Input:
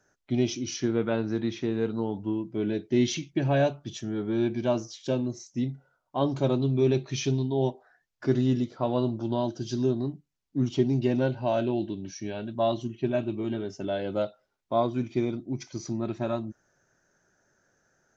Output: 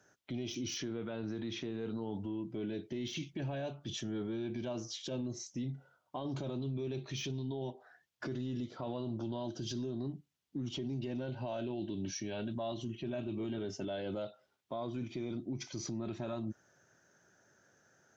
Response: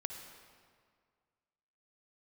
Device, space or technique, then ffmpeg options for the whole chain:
broadcast voice chain: -af "highpass=frequency=74:width=0.5412,highpass=frequency=74:width=1.3066,deesser=0.9,acompressor=threshold=-32dB:ratio=4,equalizer=frequency=3200:width_type=o:width=0.55:gain=4.5,alimiter=level_in=8dB:limit=-24dB:level=0:latency=1:release=16,volume=-8dB,volume=1dB"

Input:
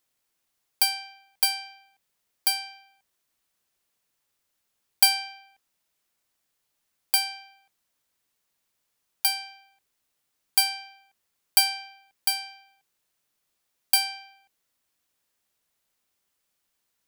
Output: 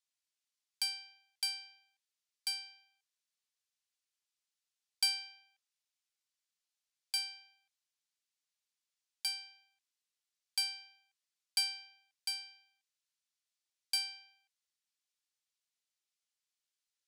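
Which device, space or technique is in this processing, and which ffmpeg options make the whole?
piezo pickup straight into a mixer: -filter_complex "[0:a]lowpass=5300,aderivative,asettb=1/sr,asplit=3[link_01][link_02][link_03];[link_01]atrim=end=12.414[link_04];[link_02]atrim=start=12.41:end=13.95,asetpts=PTS-STARTPTS,afade=type=in:duration=0.004:curve=qsin,afade=type=out:start_time=1.536:duration=0.004:curve=qsin,highpass=630[link_05];[link_03]atrim=start=13.946[link_06];[link_04][link_05]acrossfade=duration=0.004:curve1=hsin:curve2=qsin[link_07];[link_07][link_06]acrossfade=duration=0.004:curve1=qsin:curve2=hsin,volume=-3dB"

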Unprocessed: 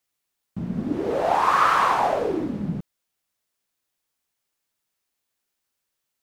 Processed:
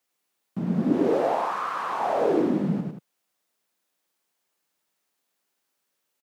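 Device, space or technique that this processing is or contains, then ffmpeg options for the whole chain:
de-esser from a sidechain: -filter_complex "[0:a]highpass=frequency=140:width=0.5412,highpass=frequency=140:width=1.3066,asplit=2[link_01][link_02];[link_02]highpass=5000,apad=whole_len=274345[link_03];[link_01][link_03]sidechaincompress=threshold=-52dB:ratio=8:attack=0.9:release=28,equalizer=frequency=570:width_type=o:width=3:gain=4,aecho=1:1:102|180.8:0.631|0.282"

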